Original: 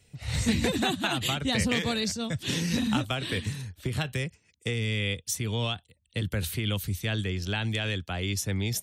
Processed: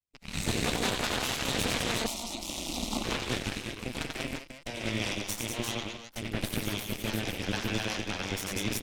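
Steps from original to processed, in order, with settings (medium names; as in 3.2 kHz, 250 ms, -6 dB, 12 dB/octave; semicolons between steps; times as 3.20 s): rattle on loud lows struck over -37 dBFS, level -27 dBFS; band-stop 1.9 kHz, Q 14; on a send: multi-tap echo 91/191/348/841 ms -3.5/-4.5/-4.5/-10 dB; on the sum: Chebyshev shaper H 3 -13 dB, 6 -13 dB, 7 -27 dB, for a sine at -10.5 dBFS; 2.06–3.04 s: static phaser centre 440 Hz, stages 6; trim -4 dB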